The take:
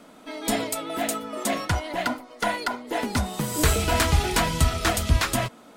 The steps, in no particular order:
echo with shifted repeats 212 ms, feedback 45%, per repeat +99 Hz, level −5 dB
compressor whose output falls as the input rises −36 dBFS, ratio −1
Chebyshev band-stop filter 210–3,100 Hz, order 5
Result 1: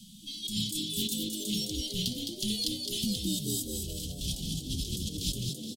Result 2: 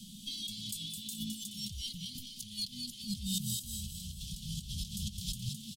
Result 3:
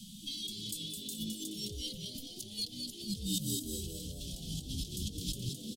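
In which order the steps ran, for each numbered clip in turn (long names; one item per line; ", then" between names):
Chebyshev band-stop filter, then compressor whose output falls as the input rises, then echo with shifted repeats
compressor whose output falls as the input rises, then echo with shifted repeats, then Chebyshev band-stop filter
compressor whose output falls as the input rises, then Chebyshev band-stop filter, then echo with shifted repeats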